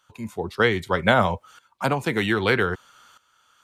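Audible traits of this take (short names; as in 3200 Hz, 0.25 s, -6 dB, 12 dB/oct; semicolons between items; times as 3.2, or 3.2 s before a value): tremolo saw up 0.63 Hz, depth 80%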